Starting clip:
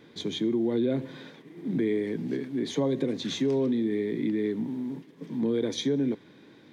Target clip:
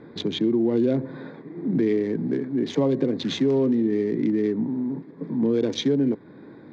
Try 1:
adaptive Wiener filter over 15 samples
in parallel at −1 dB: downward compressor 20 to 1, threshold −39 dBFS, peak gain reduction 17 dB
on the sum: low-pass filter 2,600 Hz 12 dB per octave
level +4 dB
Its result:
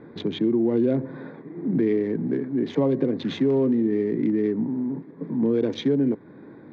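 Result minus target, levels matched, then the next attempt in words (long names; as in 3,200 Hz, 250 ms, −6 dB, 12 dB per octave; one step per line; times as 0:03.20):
4,000 Hz band −5.5 dB
adaptive Wiener filter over 15 samples
in parallel at −1 dB: downward compressor 20 to 1, threshold −39 dBFS, peak gain reduction 17 dB
on the sum: low-pass filter 5,400 Hz 12 dB per octave
level +4 dB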